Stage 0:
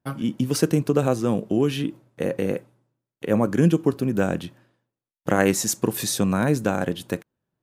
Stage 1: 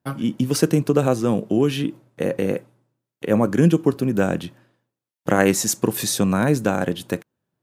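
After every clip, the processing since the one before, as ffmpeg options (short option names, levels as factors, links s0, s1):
-af "highpass=75,volume=1.33"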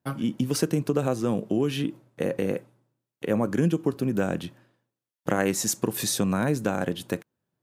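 -af "acompressor=threshold=0.112:ratio=2,volume=0.708"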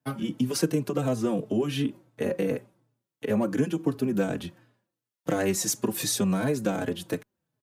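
-filter_complex "[0:a]acrossover=split=150|840|2000[s0][s1][s2][s3];[s0]alimiter=level_in=3.35:limit=0.0631:level=0:latency=1,volume=0.299[s4];[s2]asoftclip=type=hard:threshold=0.0178[s5];[s4][s1][s5][s3]amix=inputs=4:normalize=0,asplit=2[s6][s7];[s7]adelay=4.1,afreqshift=-2.8[s8];[s6][s8]amix=inputs=2:normalize=1,volume=1.33"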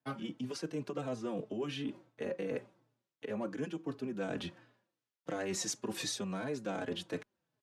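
-af "lowpass=5700,areverse,acompressor=threshold=0.0224:ratio=6,areverse,lowshelf=f=220:g=-9.5,volume=1.12"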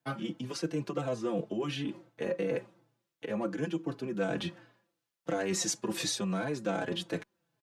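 -af "aecho=1:1:5.9:0.47,volume=1.58"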